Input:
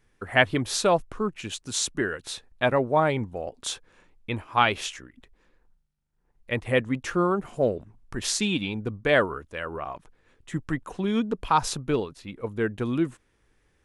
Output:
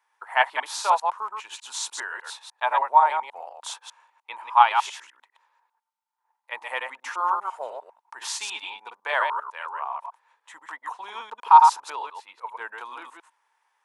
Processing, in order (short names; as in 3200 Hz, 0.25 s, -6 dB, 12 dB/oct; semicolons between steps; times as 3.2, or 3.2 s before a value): reverse delay 0.1 s, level -4 dB; ladder high-pass 870 Hz, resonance 80%; gain +7.5 dB